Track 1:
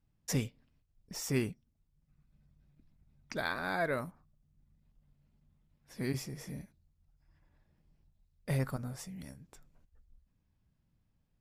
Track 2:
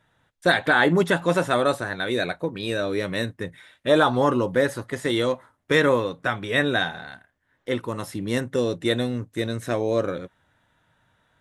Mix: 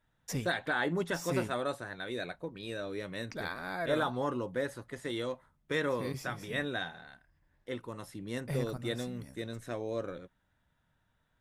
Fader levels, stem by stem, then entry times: −3.5, −13.0 decibels; 0.00, 0.00 seconds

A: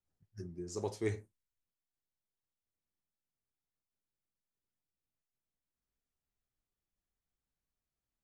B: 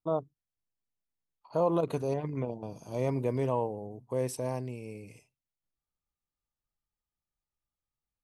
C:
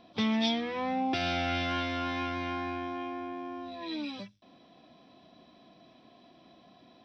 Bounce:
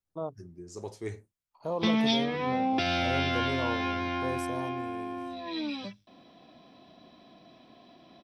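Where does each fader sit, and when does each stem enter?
−2.0, −5.5, +2.5 decibels; 0.00, 0.10, 1.65 seconds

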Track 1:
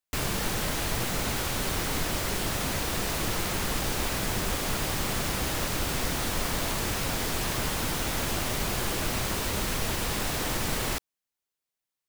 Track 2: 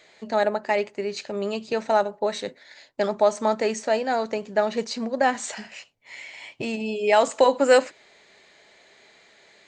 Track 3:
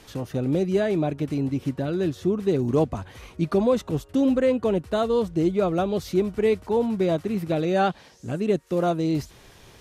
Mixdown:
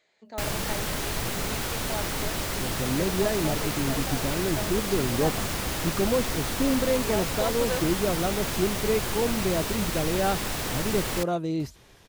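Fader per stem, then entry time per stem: −0.5, −15.0, −4.5 decibels; 0.25, 0.00, 2.45 seconds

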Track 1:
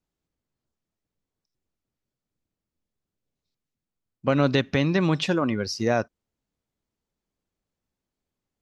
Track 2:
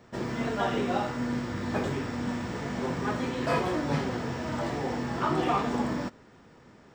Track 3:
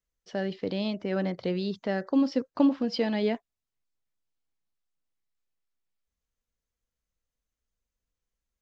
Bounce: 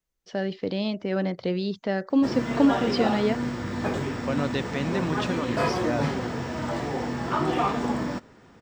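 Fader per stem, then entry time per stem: −7.0, +2.0, +2.5 decibels; 0.00, 2.10, 0.00 seconds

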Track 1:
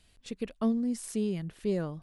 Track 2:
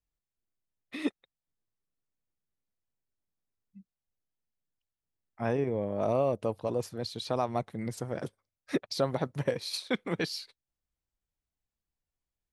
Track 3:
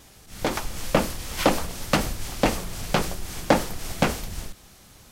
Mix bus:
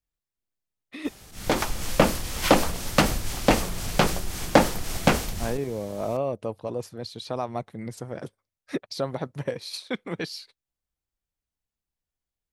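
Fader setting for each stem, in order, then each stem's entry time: muted, 0.0 dB, +2.0 dB; muted, 0.00 s, 1.05 s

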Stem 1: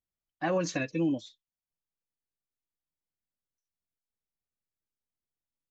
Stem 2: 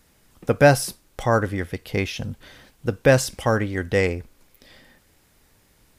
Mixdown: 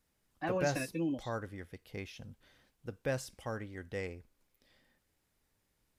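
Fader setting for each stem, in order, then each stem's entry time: −6.0, −19.0 decibels; 0.00, 0.00 seconds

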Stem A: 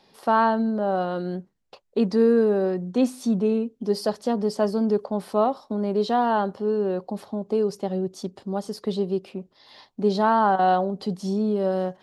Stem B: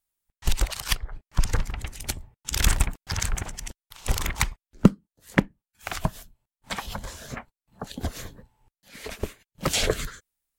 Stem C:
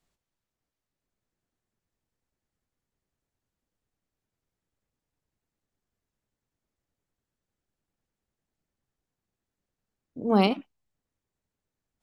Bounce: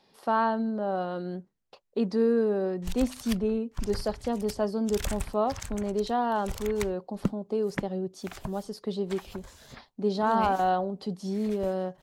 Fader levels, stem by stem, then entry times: −5.5, −12.0, −12.5 decibels; 0.00, 2.40, 0.00 seconds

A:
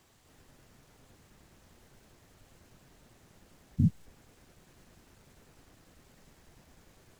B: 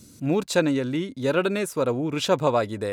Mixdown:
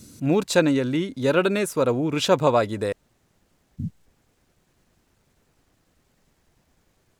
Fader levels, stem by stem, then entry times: −5.5, +2.5 decibels; 0.00, 0.00 seconds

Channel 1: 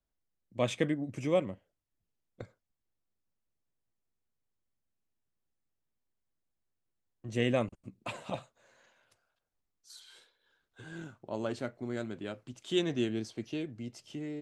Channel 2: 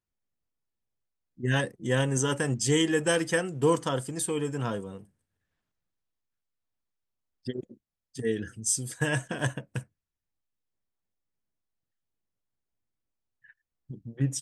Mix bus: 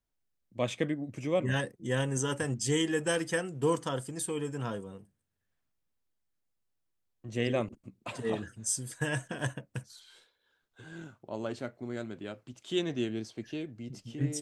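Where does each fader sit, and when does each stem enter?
−1.0, −4.5 decibels; 0.00, 0.00 seconds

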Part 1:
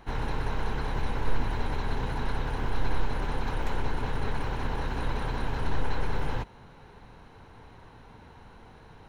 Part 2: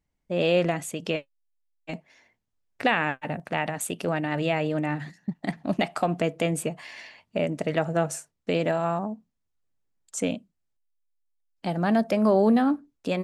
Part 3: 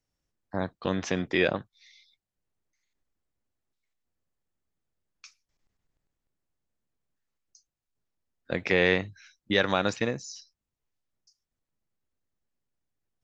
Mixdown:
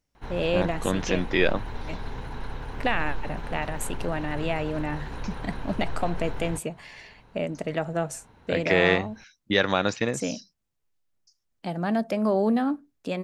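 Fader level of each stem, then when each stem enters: −5.0, −3.0, +2.0 decibels; 0.15, 0.00, 0.00 seconds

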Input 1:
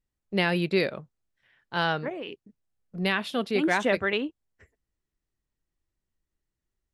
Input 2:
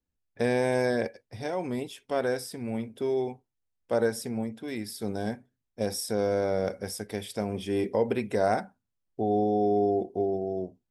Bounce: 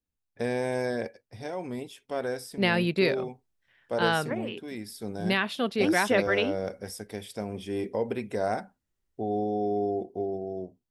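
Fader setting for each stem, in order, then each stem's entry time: 0.0, −3.5 decibels; 2.25, 0.00 seconds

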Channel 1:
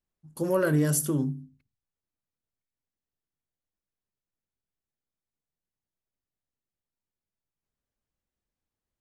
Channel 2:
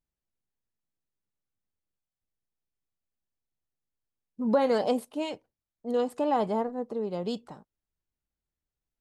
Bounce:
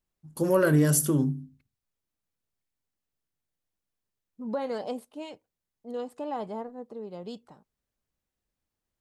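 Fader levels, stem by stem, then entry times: +2.5, −7.5 decibels; 0.00, 0.00 seconds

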